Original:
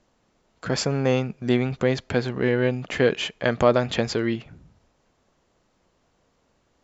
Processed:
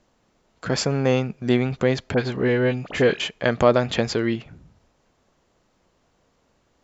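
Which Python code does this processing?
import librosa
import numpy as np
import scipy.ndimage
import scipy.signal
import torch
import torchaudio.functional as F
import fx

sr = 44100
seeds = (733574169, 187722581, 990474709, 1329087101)

y = fx.dispersion(x, sr, late='highs', ms=40.0, hz=1500.0, at=(2.14, 3.2))
y = F.gain(torch.from_numpy(y), 1.5).numpy()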